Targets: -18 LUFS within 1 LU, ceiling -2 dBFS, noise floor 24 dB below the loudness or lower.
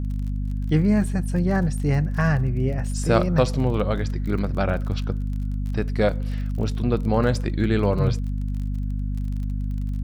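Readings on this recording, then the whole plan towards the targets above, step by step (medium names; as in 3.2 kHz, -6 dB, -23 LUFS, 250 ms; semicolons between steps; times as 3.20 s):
tick rate 34 per s; hum 50 Hz; highest harmonic 250 Hz; hum level -23 dBFS; loudness -24.0 LUFS; peak level -5.0 dBFS; loudness target -18.0 LUFS
-> de-click; de-hum 50 Hz, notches 5; trim +6 dB; peak limiter -2 dBFS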